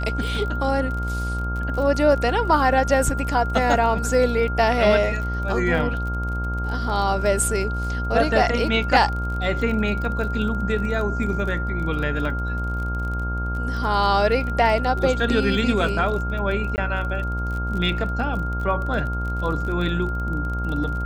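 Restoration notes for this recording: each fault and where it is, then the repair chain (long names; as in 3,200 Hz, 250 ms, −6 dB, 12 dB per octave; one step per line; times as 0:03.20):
mains buzz 60 Hz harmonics 22 −26 dBFS
surface crackle 31 per second −29 dBFS
whistle 1,400 Hz −29 dBFS
0:16.76–0:16.78: drop-out 19 ms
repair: click removal
notch filter 1,400 Hz, Q 30
hum removal 60 Hz, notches 22
repair the gap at 0:16.76, 19 ms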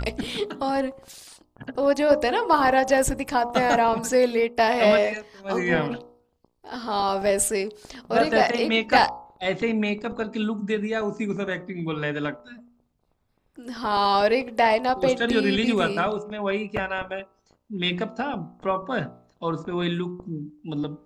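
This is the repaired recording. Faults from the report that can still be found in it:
none of them is left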